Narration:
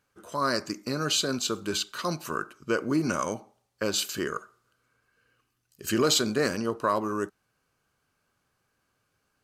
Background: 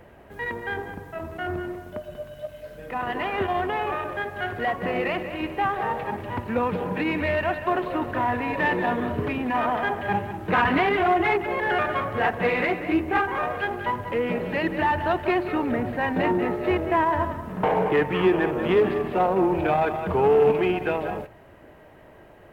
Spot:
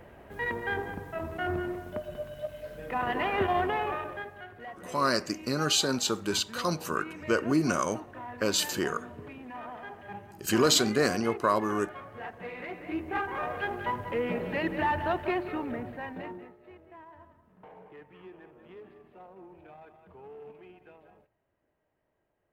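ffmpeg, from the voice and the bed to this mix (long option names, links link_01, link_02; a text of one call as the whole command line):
ffmpeg -i stem1.wav -i stem2.wav -filter_complex "[0:a]adelay=4600,volume=0.5dB[link_01];[1:a]volume=11dB,afade=type=out:start_time=3.6:duration=0.86:silence=0.158489,afade=type=in:start_time=12.58:duration=1.11:silence=0.237137,afade=type=out:start_time=15.04:duration=1.5:silence=0.0630957[link_02];[link_01][link_02]amix=inputs=2:normalize=0" out.wav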